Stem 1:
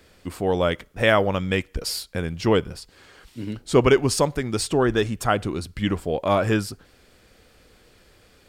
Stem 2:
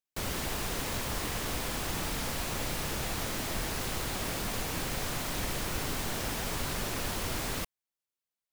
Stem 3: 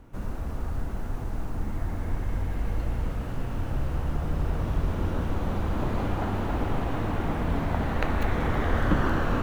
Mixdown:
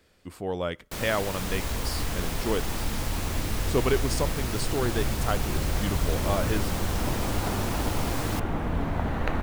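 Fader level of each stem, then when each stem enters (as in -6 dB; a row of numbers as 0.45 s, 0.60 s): -8.5 dB, 0.0 dB, -1.0 dB; 0.00 s, 0.75 s, 1.25 s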